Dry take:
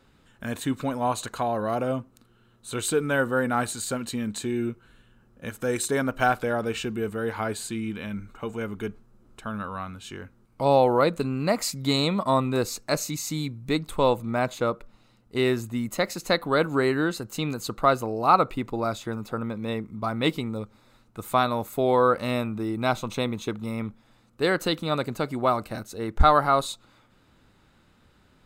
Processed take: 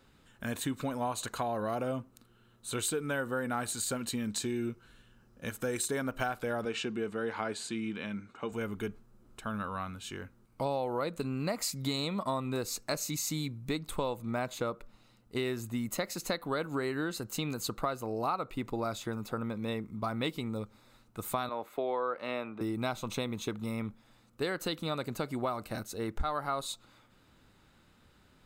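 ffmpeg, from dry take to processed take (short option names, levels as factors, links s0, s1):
-filter_complex "[0:a]asettb=1/sr,asplit=3[s0][s1][s2];[s0]atrim=end=4.244[s3];[s1]atrim=start=4.24:end=5.5,asetpts=PTS-STARTPTS,afade=t=in:d=0.004:c=qsin,afade=t=out:st=1.256:d=0.004:c=qsin,equalizer=f=5300:w=2.1:g=6[s4];[s2]atrim=start=5.496[s5];[s3][s4]acrossfade=d=0.004:c1=hsin:c2=qsin[s6];[s6][s5]acrossfade=d=0.004:c1=qsin:c2=hsin,asettb=1/sr,asplit=3[s7][s8][s9];[s7]atrim=end=6.654[s10];[s8]atrim=start=6.65:end=8.52,asetpts=PTS-STARTPTS,afade=t=in:d=0.004:c=qsin,afade=t=out:st=1.866:d=0.004:c=qsin,highpass=160,lowpass=6200[s11];[s9]atrim=start=8.516[s12];[s10][s11]acrossfade=d=0.004:c1=hsin:c2=qsin[s13];[s13][s12]acrossfade=d=0.004:c1=qsin:c2=hsin,asettb=1/sr,asplit=3[s14][s15][s16];[s14]atrim=end=21.494[s17];[s15]atrim=start=21.49:end=22.61,asetpts=PTS-STARTPTS,afade=t=in:d=0.004:c=qsin,afade=t=out:st=1.116:d=0.004:c=qsin,acrossover=split=290 3600:gain=0.126 1 0.112[s18][s19][s20];[s18][s19][s20]amix=inputs=3:normalize=0[s21];[s16]atrim=start=22.606[s22];[s17][s21]acrossfade=d=0.004:c1=hsin:c2=qsin[s23];[s23][s22]acrossfade=d=0.004:c1=qsin:c2=hsin,lowpass=f=2900:p=1,aemphasis=mode=production:type=75kf,acompressor=threshold=0.0501:ratio=6,volume=0.668"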